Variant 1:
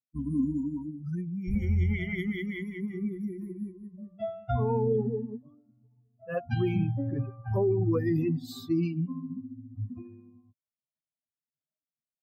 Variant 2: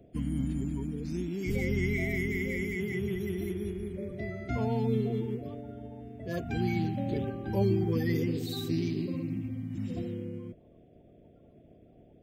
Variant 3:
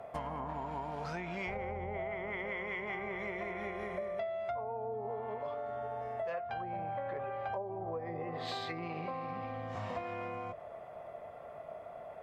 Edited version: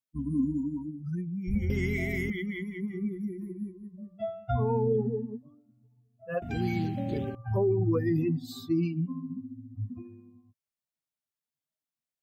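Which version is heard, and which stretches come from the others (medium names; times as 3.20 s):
1
1.70–2.30 s: from 2
6.42–7.35 s: from 2
not used: 3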